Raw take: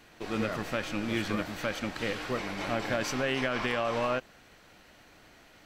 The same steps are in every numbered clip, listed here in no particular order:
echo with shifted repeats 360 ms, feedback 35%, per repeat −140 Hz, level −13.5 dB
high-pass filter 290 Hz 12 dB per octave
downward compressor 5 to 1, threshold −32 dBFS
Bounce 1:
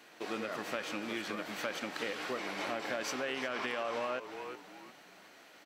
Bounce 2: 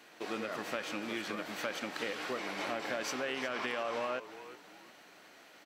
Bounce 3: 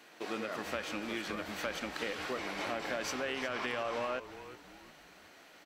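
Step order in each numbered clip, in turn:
echo with shifted repeats, then downward compressor, then high-pass filter
downward compressor, then echo with shifted repeats, then high-pass filter
downward compressor, then high-pass filter, then echo with shifted repeats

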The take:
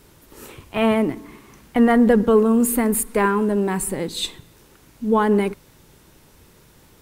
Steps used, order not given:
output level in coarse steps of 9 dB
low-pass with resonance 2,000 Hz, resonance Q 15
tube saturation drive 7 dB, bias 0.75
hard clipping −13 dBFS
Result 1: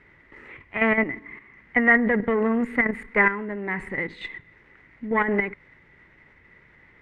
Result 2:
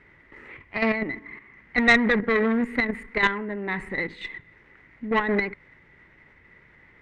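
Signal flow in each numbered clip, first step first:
output level in coarse steps, then tube saturation, then hard clipping, then low-pass with resonance
hard clipping, then output level in coarse steps, then low-pass with resonance, then tube saturation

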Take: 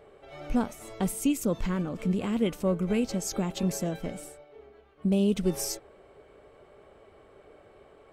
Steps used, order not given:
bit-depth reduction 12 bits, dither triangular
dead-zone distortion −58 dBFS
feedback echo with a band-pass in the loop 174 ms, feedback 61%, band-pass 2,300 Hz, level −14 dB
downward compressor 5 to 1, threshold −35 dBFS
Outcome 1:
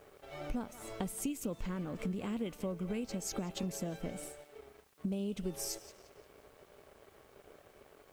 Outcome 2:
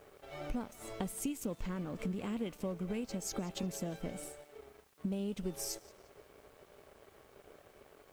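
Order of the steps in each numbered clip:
feedback echo with a band-pass in the loop, then dead-zone distortion, then downward compressor, then bit-depth reduction
downward compressor, then feedback echo with a band-pass in the loop, then dead-zone distortion, then bit-depth reduction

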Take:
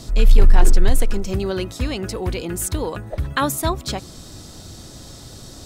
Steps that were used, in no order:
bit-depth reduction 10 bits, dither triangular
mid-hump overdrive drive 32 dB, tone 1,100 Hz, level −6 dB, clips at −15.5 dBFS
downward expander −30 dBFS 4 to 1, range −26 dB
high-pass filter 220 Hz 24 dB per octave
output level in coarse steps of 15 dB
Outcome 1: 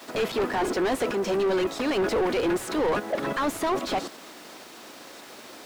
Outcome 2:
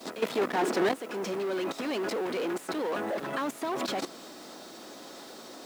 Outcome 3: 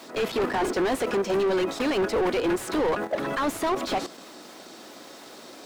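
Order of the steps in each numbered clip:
downward expander, then output level in coarse steps, then high-pass filter, then bit-depth reduction, then mid-hump overdrive
mid-hump overdrive, then downward expander, then output level in coarse steps, then high-pass filter, then bit-depth reduction
downward expander, then high-pass filter, then bit-depth reduction, then output level in coarse steps, then mid-hump overdrive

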